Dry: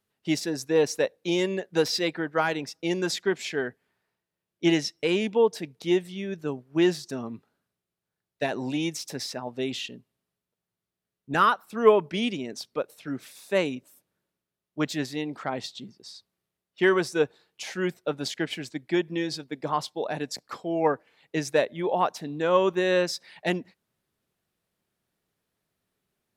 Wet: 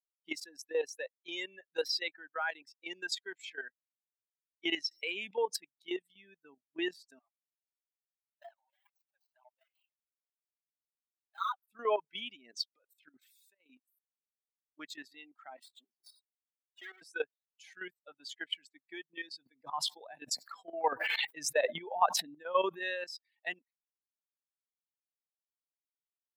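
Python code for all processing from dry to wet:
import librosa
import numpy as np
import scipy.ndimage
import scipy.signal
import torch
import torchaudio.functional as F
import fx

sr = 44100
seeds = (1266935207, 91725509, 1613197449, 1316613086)

y = fx.chain(x, sr, fx.low_shelf(hz=470.0, db=-2.0),
    fx.env_flatten(amount_pct=50), at=(4.91, 5.57))
y = fx.chain(y, sr, fx.median_filter(points=25),
    fx.brickwall_highpass(low_hz=530.0),
    fx.flanger_cancel(hz=2.0, depth_ms=5.1), at=(7.19, 11.63))
y = fx.chain(y, sr, fx.peak_eq(hz=11000.0, db=-12.0, octaves=0.33),
    fx.over_compress(threshold_db=-36.0, ratio=-1.0), at=(12.42, 13.72))
y = fx.chain(y, sr, fx.lower_of_two(delay_ms=3.1),
    fx.highpass(hz=190.0, slope=24),
    fx.band_squash(depth_pct=70), at=(15.57, 17.02))
y = fx.chain(y, sr, fx.chopper(hz=11.0, depth_pct=65, duty_pct=65),
    fx.low_shelf(hz=370.0, db=5.0),
    fx.sustainer(db_per_s=24.0), at=(19.37, 22.83))
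y = fx.bin_expand(y, sr, power=2.0)
y = fx.level_steps(y, sr, step_db=12)
y = scipy.signal.sosfilt(scipy.signal.butter(2, 750.0, 'highpass', fs=sr, output='sos'), y)
y = F.gain(torch.from_numpy(y), 4.0).numpy()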